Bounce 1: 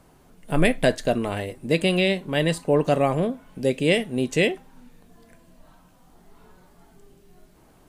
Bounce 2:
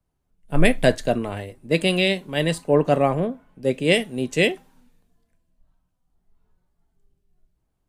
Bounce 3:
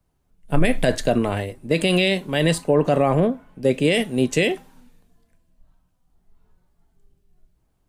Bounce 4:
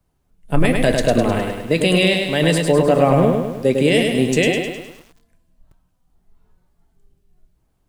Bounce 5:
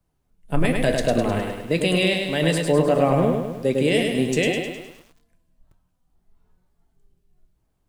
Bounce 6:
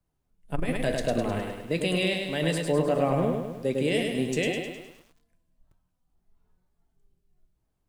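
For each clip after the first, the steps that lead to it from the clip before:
three-band expander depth 70%
limiter -14 dBFS, peak gain reduction 11.5 dB; gain +6 dB
lo-fi delay 0.103 s, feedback 55%, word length 8-bit, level -4 dB; gain +2 dB
flange 0.56 Hz, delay 5.5 ms, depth 8.9 ms, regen +85%
core saturation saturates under 55 Hz; gain -6 dB

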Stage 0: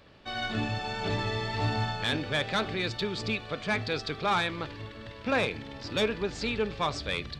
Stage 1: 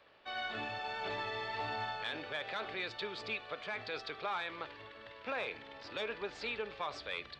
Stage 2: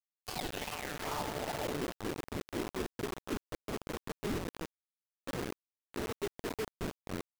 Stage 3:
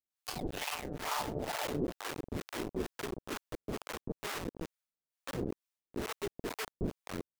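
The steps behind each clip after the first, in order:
three-band isolator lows -17 dB, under 420 Hz, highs -14 dB, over 4100 Hz; limiter -24.5 dBFS, peak gain reduction 7.5 dB; gain -4 dB
decimation with a swept rate 33×, swing 60% 2.4 Hz; low-pass sweep 6600 Hz -> 360 Hz, 0.12–1.91; requantised 6-bit, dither none; gain -1 dB
harmonic tremolo 2.2 Hz, depth 100%, crossover 610 Hz; gain +5 dB

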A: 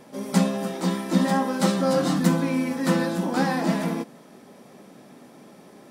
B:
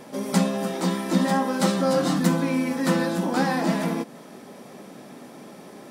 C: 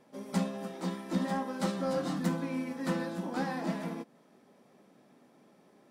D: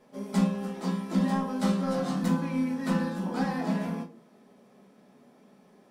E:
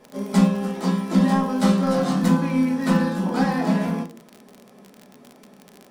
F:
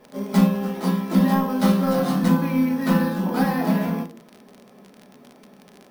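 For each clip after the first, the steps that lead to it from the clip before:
low shelf 150 Hz -3.5 dB; in parallel at +2 dB: compressor, threshold -33 dBFS, peak gain reduction 16.5 dB; on the sum: gain -1.5 dB
high shelf 4900 Hz -5.5 dB; soft clip -10.5 dBFS, distortion -24 dB; upward expander 1.5:1, over -39 dBFS; gain -7.5 dB
reverb RT60 0.35 s, pre-delay 5 ms, DRR 0.5 dB
crackle 36/s -37 dBFS; gain +8 dB
careless resampling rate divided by 3×, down filtered, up hold

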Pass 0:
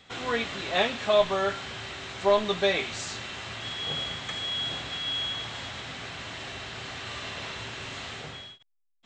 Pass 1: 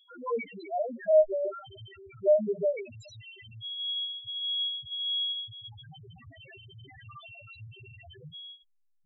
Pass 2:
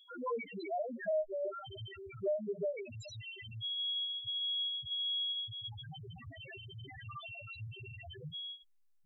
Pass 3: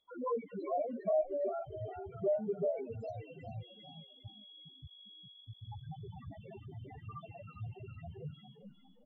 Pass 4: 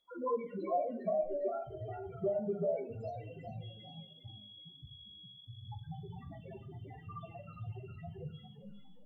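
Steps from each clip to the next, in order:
notches 60/120/180 Hz; tape echo 0.198 s, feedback 48%, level -20 dB, low-pass 1400 Hz; loudest bins only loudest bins 1; gain +6 dB
compressor 3:1, threshold -38 dBFS, peak gain reduction 16 dB; gain +1.5 dB
spectral limiter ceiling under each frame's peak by 15 dB; polynomial smoothing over 65 samples; on a send: frequency-shifting echo 0.404 s, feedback 38%, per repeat +50 Hz, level -10 dB; on the sum: gain +3 dB
shoebox room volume 470 m³, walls furnished, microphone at 0.86 m

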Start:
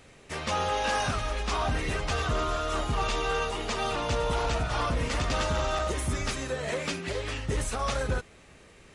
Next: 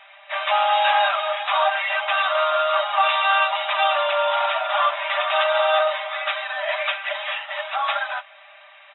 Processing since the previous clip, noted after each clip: FFT band-pass 580–3900 Hz; comb 5.1 ms, depth 72%; gain +9 dB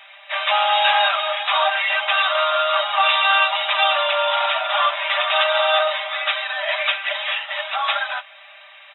high shelf 2800 Hz +12 dB; gain -1 dB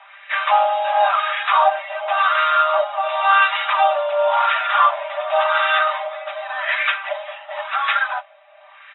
wah 0.92 Hz 440–1700 Hz, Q 2.1; gain +7 dB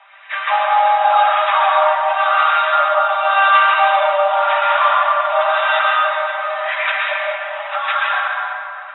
reverb RT60 2.8 s, pre-delay 0.103 s, DRR -3.5 dB; gain -2 dB

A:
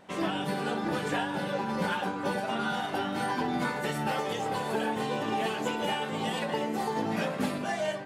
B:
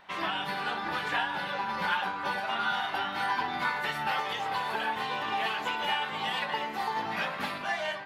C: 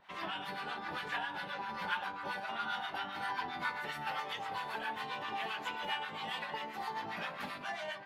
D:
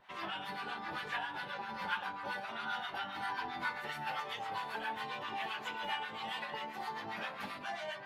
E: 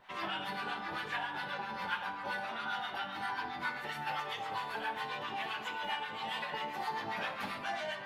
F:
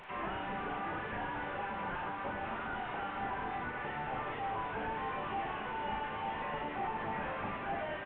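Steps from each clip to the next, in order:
graphic EQ 125/250/500/1000/2000/4000/8000 Hz -8/-10/-8/+5/+4/+5/-11 dB
harmonic tremolo 7.5 Hz, depth 70%, crossover 820 Hz; gain -4.5 dB
reverse; upward compressor, threshold -44 dBFS; reverse; flange 0.74 Hz, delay 7.9 ms, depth 1.6 ms, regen -40%; gain +3 dB
vocal rider 0.5 s; reverb RT60 1.0 s, pre-delay 37 ms, DRR 10.5 dB; gain +1.5 dB
delta modulation 16 kbps, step -48 dBFS; doubler 38 ms -6 dB; gain +3 dB

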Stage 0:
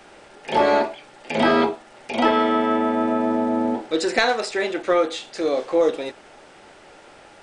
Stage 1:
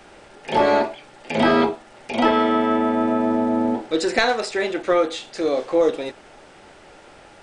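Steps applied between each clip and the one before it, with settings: low shelf 150 Hz +6.5 dB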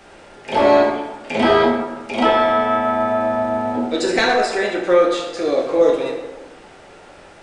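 plate-style reverb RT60 1.2 s, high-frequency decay 0.55×, DRR -0.5 dB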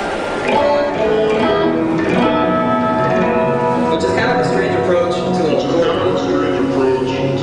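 bin magnitudes rounded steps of 15 dB; echoes that change speed 0.25 s, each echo -5 st, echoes 3; three-band squash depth 100%

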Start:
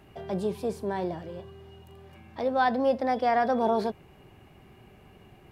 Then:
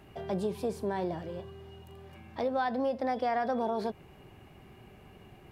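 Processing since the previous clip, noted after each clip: compressor 6:1, threshold -27 dBFS, peak gain reduction 8 dB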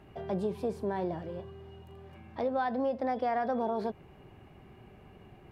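high shelf 3300 Hz -9.5 dB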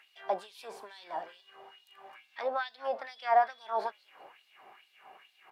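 frequency-shifting echo 0.192 s, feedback 59%, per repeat -67 Hz, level -21 dB; LFO high-pass sine 2.3 Hz 720–4100 Hz; gain +2.5 dB

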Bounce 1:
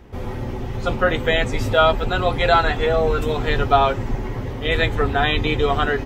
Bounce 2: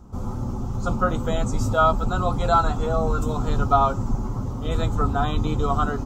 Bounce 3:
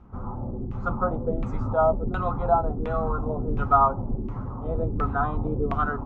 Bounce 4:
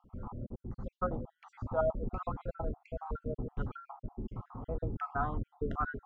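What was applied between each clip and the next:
EQ curve 140 Hz 0 dB, 200 Hz +4 dB, 420 Hz -9 dB, 1300 Hz +1 dB, 1800 Hz -23 dB, 3300 Hz -14 dB, 7100 Hz +5 dB, 10000 Hz -4 dB
LFO low-pass saw down 1.4 Hz 310–2500 Hz; gain -5 dB
random spectral dropouts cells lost 48%; gain -8 dB

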